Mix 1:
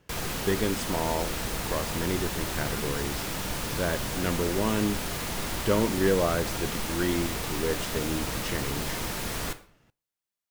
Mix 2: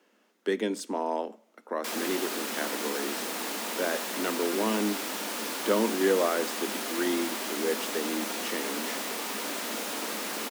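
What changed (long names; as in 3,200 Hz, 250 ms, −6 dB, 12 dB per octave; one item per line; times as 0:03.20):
background: entry +1.75 s
master: add Butterworth high-pass 210 Hz 72 dB per octave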